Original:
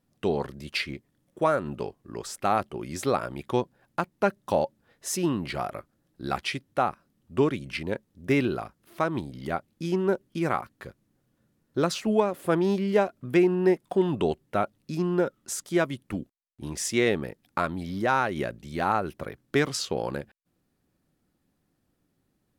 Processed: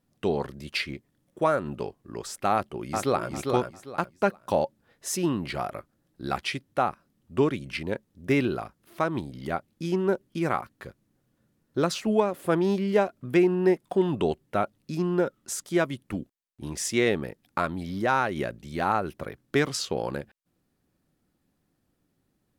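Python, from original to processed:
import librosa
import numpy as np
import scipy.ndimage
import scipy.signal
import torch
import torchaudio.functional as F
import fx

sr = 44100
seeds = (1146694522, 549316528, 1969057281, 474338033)

y = fx.echo_throw(x, sr, start_s=2.53, length_s=0.77, ms=400, feedback_pct=25, wet_db=-4.0)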